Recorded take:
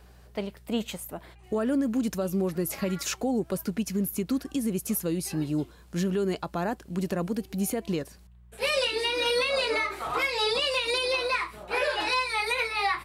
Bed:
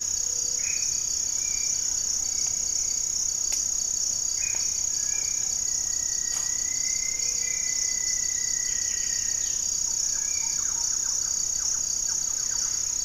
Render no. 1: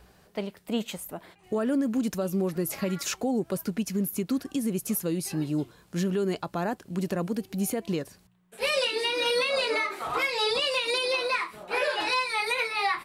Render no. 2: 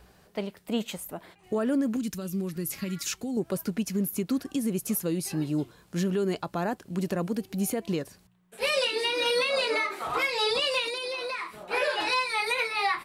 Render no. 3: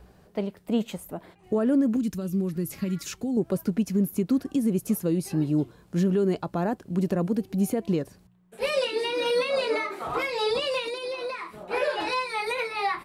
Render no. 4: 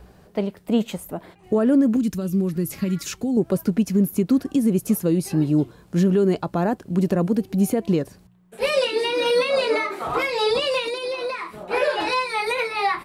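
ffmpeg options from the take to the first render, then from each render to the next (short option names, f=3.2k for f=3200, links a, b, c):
-af "bandreject=f=60:t=h:w=4,bandreject=f=120:t=h:w=4"
-filter_complex "[0:a]asettb=1/sr,asplit=3[a][b][c];[a]atrim=end=1.964[d];[b]atrim=start=1.96:end=3.37,asetpts=PTS-STARTPTS,afade=t=in:d=0.004:c=qsin,afade=t=out:st=1.406:d=0.004:c=qsin,equalizer=f=680:w=0.79:g=-14[e];[c]atrim=start=3.366[f];[d][e]acrossfade=d=0.004:c1=hsin:c2=qsin[g];[g][f]acrossfade=d=0.004:c1=qsin:c2=hsin,asettb=1/sr,asplit=3[h][i][j];[h]atrim=end=8.664[k];[i]atrim=start=8.66:end=10.07,asetpts=PTS-STARTPTS,afade=t=in:d=0.004:c=qsin,afade=t=out:st=1.406:d=0.004:c=qsin,highpass=f=96:w=0.5412,highpass=f=96:w=1.3066[l];[j]atrim=start=10.066[m];[k][l]acrossfade=d=0.004:c1=hsin:c2=qsin[n];[n][m]acrossfade=d=0.004:c1=qsin:c2=hsin,asettb=1/sr,asplit=3[o][p][q];[o]atrim=end=10.884[r];[p]atrim=start=10.88:end=11.63,asetpts=PTS-STARTPTS,afade=t=in:d=0.004:c=qsin,afade=t=out:st=0.746:d=0.004:c=qsin,acompressor=threshold=-30dB:ratio=4:attack=3.2:release=140:knee=1:detection=peak[s];[q]atrim=start=11.626[t];[r][s]acrossfade=d=0.004:c1=hsin:c2=qsin[u];[u][t]acrossfade=d=0.004:c1=qsin:c2=hsin"
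-af "tiltshelf=f=970:g=5"
-af "volume=5dB"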